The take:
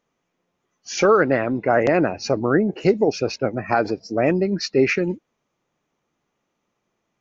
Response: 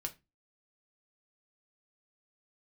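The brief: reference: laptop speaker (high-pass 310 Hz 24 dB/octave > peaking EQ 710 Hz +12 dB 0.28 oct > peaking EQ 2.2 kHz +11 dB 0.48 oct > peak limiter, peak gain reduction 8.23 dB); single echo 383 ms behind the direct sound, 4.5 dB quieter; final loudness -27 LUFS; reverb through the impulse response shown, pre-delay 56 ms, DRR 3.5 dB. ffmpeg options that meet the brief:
-filter_complex "[0:a]aecho=1:1:383:0.596,asplit=2[s0][s1];[1:a]atrim=start_sample=2205,adelay=56[s2];[s1][s2]afir=irnorm=-1:irlink=0,volume=0.75[s3];[s0][s3]amix=inputs=2:normalize=0,highpass=f=310:w=0.5412,highpass=f=310:w=1.3066,equalizer=f=710:t=o:w=0.28:g=12,equalizer=f=2200:t=o:w=0.48:g=11,volume=0.335,alimiter=limit=0.141:level=0:latency=1"

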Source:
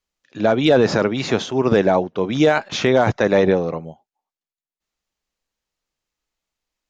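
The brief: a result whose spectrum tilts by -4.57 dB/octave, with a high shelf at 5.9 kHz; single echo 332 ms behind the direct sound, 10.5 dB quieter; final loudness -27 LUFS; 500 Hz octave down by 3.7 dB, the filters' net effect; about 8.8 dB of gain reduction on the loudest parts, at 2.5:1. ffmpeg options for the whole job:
-af "equalizer=f=500:t=o:g=-4.5,highshelf=f=5900:g=-6,acompressor=threshold=0.0501:ratio=2.5,aecho=1:1:332:0.299,volume=1.06"

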